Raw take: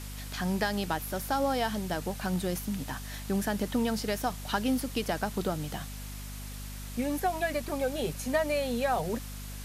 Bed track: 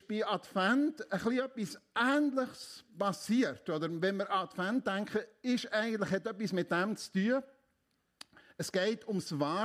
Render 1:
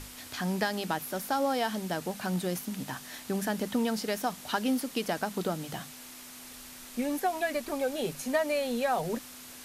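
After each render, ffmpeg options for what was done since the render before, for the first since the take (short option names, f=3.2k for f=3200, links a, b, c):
-af "bandreject=f=50:t=h:w=6,bandreject=f=100:t=h:w=6,bandreject=f=150:t=h:w=6,bandreject=f=200:t=h:w=6"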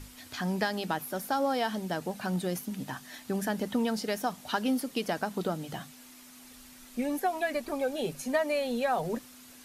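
-af "afftdn=nr=7:nf=-47"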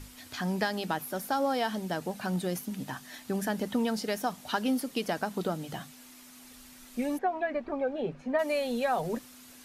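-filter_complex "[0:a]asplit=3[a][b][c];[a]afade=t=out:st=7.17:d=0.02[d];[b]lowpass=1.8k,afade=t=in:st=7.17:d=0.02,afade=t=out:st=8.38:d=0.02[e];[c]afade=t=in:st=8.38:d=0.02[f];[d][e][f]amix=inputs=3:normalize=0"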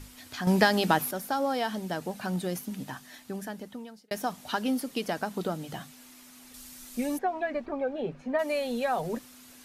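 -filter_complex "[0:a]asettb=1/sr,asplit=3[a][b][c];[a]atrim=end=6.544[d];[b]atrim=start=6.54:end=7.66,asetpts=PTS-STARTPTS,afade=t=in:d=0.004:c=qsin,afade=t=out:st=1.116:d=0.004:c=qsin,bass=f=250:g=2,treble=f=4k:g=7[e];[c]atrim=start=7.656[f];[d][e]acrossfade=d=0.004:c1=hsin:c2=qsin[g];[g][f]acrossfade=d=0.004:c1=qsin:c2=hsin,asplit=4[h][i][j][k];[h]atrim=end=0.472[l];[i]atrim=start=0.468:end=1.112,asetpts=PTS-STARTPTS,volume=8dB[m];[j]atrim=start=1.108:end=4.11,asetpts=PTS-STARTPTS,afade=t=out:st=1.642:d=1.36[n];[k]atrim=start=4.11,asetpts=PTS-STARTPTS,afade=t=in:d=0.004:c=hsin[o];[l][m]acrossfade=d=0.004:c1=hsin:c2=hsin[p];[n][o]concat=n=2:v=0:a=1[q];[p][q]acrossfade=d=0.004:c1=hsin:c2=hsin"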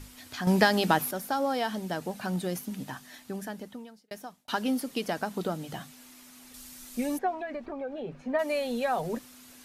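-filter_complex "[0:a]asettb=1/sr,asplit=3[a][b][c];[a]atrim=end=7.344[d];[b]atrim=start=7.34:end=8.23,asetpts=PTS-STARTPTS,afade=t=in:d=0.004:c=qsin,afade=t=out:st=0.886:d=0.004:c=qsin,acompressor=threshold=-34dB:ratio=2.5:attack=3.2:release=140:knee=1:detection=peak[e];[c]atrim=start=8.226[f];[d][e]acrossfade=d=0.004:c1=hsin:c2=qsin[g];[g][f]acrossfade=d=0.004:c1=qsin:c2=hsin,asplit=2[h][i];[h]atrim=end=4.48,asetpts=PTS-STARTPTS,afade=t=out:st=3.64:d=0.84[j];[i]atrim=start=4.48,asetpts=PTS-STARTPTS,afade=t=in:d=0.004:c=hsin[k];[j][k]concat=n=2:v=0:a=1"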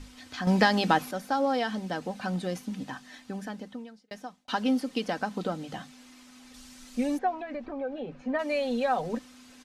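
-af "lowpass=6.4k,aecho=1:1:3.9:0.39"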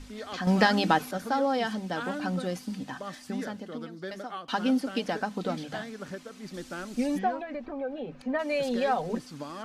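-filter_complex "[1:a]volume=-6.5dB[a];[0:a][a]amix=inputs=2:normalize=0"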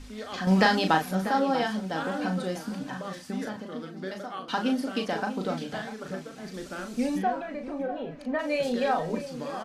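-filter_complex "[0:a]asplit=2[a][b];[b]adelay=37,volume=-6dB[c];[a][c]amix=inputs=2:normalize=0,asplit=2[d][e];[e]adelay=641.4,volume=-11dB,highshelf=f=4k:g=-14.4[f];[d][f]amix=inputs=2:normalize=0"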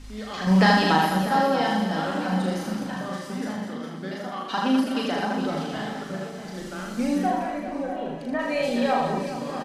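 -filter_complex "[0:a]asplit=2[a][b];[b]adelay=38,volume=-3.5dB[c];[a][c]amix=inputs=2:normalize=0,aecho=1:1:80|208|412.8|740.5|1265:0.631|0.398|0.251|0.158|0.1"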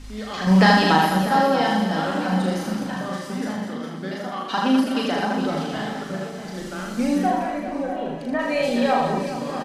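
-af "volume=3dB"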